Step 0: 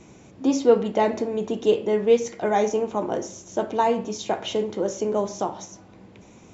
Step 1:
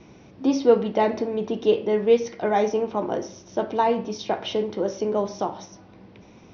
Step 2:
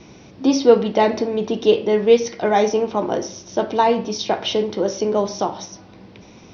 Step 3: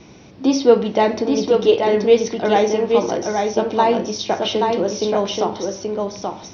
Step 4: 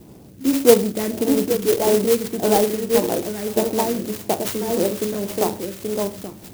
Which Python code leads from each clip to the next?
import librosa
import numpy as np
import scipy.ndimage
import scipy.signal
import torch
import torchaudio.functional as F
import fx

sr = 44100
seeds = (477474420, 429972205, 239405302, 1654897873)

y1 = scipy.signal.sosfilt(scipy.signal.butter(16, 5900.0, 'lowpass', fs=sr, output='sos'), x)
y2 = fx.peak_eq(y1, sr, hz=4900.0, db=6.5, octaves=1.4)
y2 = y2 * librosa.db_to_amplitude(4.5)
y3 = y2 + 10.0 ** (-4.0 / 20.0) * np.pad(y2, (int(829 * sr / 1000.0), 0))[:len(y2)]
y4 = fx.phaser_stages(y3, sr, stages=2, low_hz=780.0, high_hz=3100.0, hz=1.7, feedback_pct=25)
y4 = fx.air_absorb(y4, sr, metres=58.0)
y4 = fx.clock_jitter(y4, sr, seeds[0], jitter_ms=0.098)